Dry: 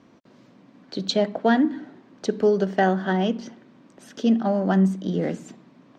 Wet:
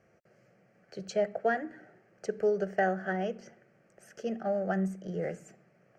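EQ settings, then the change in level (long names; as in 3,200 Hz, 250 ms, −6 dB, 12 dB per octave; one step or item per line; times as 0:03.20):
phaser with its sweep stopped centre 1,000 Hz, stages 6
−5.0 dB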